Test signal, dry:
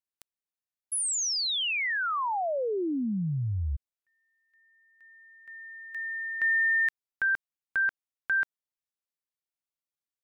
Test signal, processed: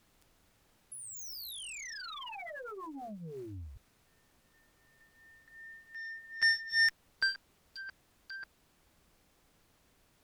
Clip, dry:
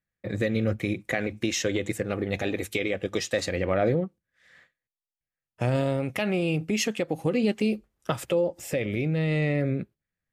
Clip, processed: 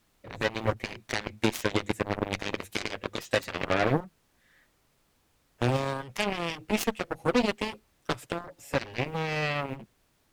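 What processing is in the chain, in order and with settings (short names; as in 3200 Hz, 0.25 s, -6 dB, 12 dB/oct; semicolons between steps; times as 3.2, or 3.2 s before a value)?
flange 0.24 Hz, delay 6.6 ms, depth 3.1 ms, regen 0%; added noise pink -64 dBFS; added harmonics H 4 -36 dB, 5 -20 dB, 7 -11 dB, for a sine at -13.5 dBFS; gain +2 dB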